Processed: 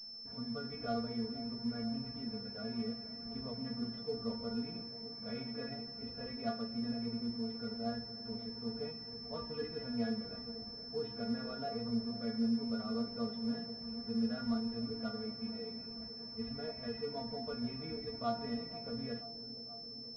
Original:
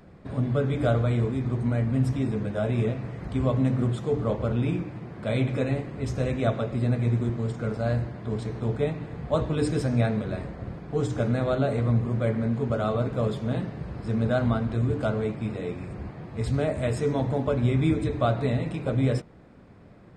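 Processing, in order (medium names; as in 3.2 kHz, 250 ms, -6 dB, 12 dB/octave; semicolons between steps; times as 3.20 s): inharmonic resonator 230 Hz, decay 0.21 s, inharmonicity 0.002; feedback echo behind a low-pass 483 ms, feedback 75%, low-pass 770 Hz, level -13.5 dB; class-D stage that switches slowly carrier 5.3 kHz; trim -3 dB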